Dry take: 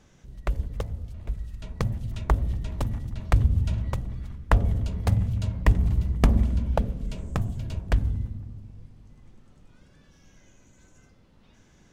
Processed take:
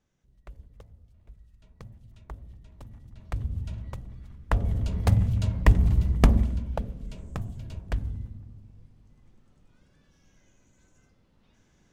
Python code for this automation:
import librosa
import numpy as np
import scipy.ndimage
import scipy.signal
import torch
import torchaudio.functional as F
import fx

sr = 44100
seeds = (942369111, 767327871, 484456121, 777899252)

y = fx.gain(x, sr, db=fx.line((2.75, -19.0), (3.55, -9.0), (4.26, -9.0), (4.96, 1.5), (6.24, 1.5), (6.68, -6.5)))